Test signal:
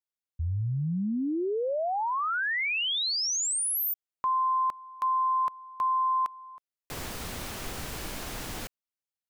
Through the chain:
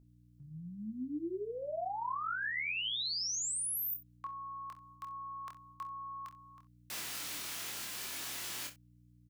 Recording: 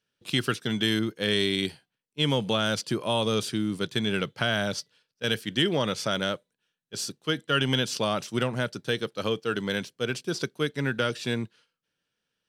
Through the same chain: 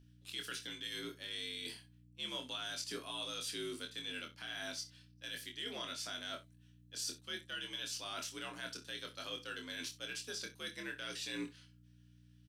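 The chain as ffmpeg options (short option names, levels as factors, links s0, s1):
-filter_complex "[0:a]highpass=270,equalizer=f=450:t=o:w=2.8:g=-14.5,areverse,acompressor=threshold=0.0112:ratio=10:attack=6.1:release=210:knee=1:detection=rms,areverse,alimiter=level_in=3.55:limit=0.0631:level=0:latency=1:release=131,volume=0.282,afreqshift=60,aeval=exprs='val(0)+0.000708*(sin(2*PI*60*n/s)+sin(2*PI*2*60*n/s)/2+sin(2*PI*3*60*n/s)/3+sin(2*PI*4*60*n/s)/4+sin(2*PI*5*60*n/s)/5)':c=same,asplit=2[s0][s1];[s1]adelay=24,volume=0.531[s2];[s0][s2]amix=inputs=2:normalize=0,asplit=2[s3][s4];[s4]aecho=0:1:27|65:0.355|0.158[s5];[s3][s5]amix=inputs=2:normalize=0,volume=1.33"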